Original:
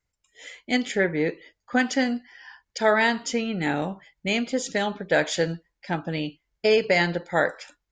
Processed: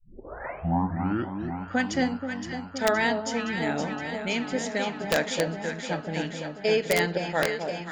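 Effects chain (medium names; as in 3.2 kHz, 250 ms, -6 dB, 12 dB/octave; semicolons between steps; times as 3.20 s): tape start-up on the opening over 1.68 s; echo whose repeats swap between lows and highs 259 ms, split 990 Hz, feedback 84%, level -6 dB; integer overflow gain 9 dB; trim -4 dB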